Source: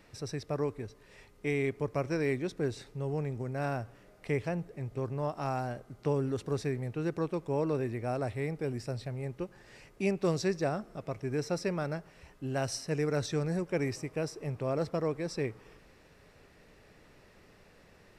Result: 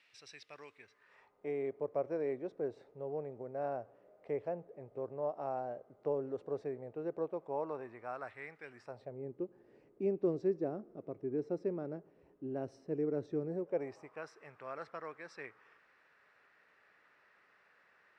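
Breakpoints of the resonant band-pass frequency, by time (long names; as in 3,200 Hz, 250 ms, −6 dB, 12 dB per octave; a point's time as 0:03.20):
resonant band-pass, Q 2
0:00.73 2,800 Hz
0:01.51 570 Hz
0:07.22 570 Hz
0:08.68 1,900 Hz
0:09.21 350 Hz
0:13.46 350 Hz
0:14.32 1,500 Hz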